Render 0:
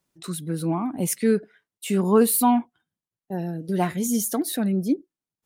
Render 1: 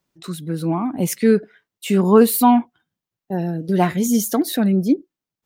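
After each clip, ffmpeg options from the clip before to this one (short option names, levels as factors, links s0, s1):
-af "equalizer=f=9900:w=1.3:g=-7.5,dynaudnorm=f=360:g=5:m=1.58,volume=1.33"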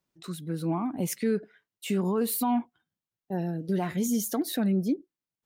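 -af "alimiter=limit=0.266:level=0:latency=1:release=98,volume=0.422"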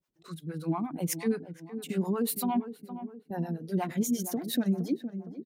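-filter_complex "[0:a]asplit=2[s0][s1];[s1]adelay=464,lowpass=f=1100:p=1,volume=0.299,asplit=2[s2][s3];[s3]adelay=464,lowpass=f=1100:p=1,volume=0.54,asplit=2[s4][s5];[s5]adelay=464,lowpass=f=1100:p=1,volume=0.54,asplit=2[s6][s7];[s7]adelay=464,lowpass=f=1100:p=1,volume=0.54,asplit=2[s8][s9];[s9]adelay=464,lowpass=f=1100:p=1,volume=0.54,asplit=2[s10][s11];[s11]adelay=464,lowpass=f=1100:p=1,volume=0.54[s12];[s0][s2][s4][s6][s8][s10][s12]amix=inputs=7:normalize=0,acrossover=split=490[s13][s14];[s13]aeval=exprs='val(0)*(1-1/2+1/2*cos(2*PI*8.5*n/s))':c=same[s15];[s14]aeval=exprs='val(0)*(1-1/2-1/2*cos(2*PI*8.5*n/s))':c=same[s16];[s15][s16]amix=inputs=2:normalize=0,volume=1.26"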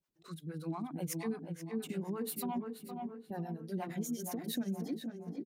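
-filter_complex "[0:a]acompressor=threshold=0.02:ratio=2,asplit=2[s0][s1];[s1]adelay=482,lowpass=f=3400:p=1,volume=0.473,asplit=2[s2][s3];[s3]adelay=482,lowpass=f=3400:p=1,volume=0.4,asplit=2[s4][s5];[s5]adelay=482,lowpass=f=3400:p=1,volume=0.4,asplit=2[s6][s7];[s7]adelay=482,lowpass=f=3400:p=1,volume=0.4,asplit=2[s8][s9];[s9]adelay=482,lowpass=f=3400:p=1,volume=0.4[s10];[s0][s2][s4][s6][s8][s10]amix=inputs=6:normalize=0,volume=0.631"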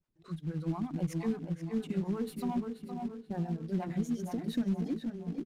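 -af "acrusher=bits=4:mode=log:mix=0:aa=0.000001,aemphasis=mode=reproduction:type=bsi"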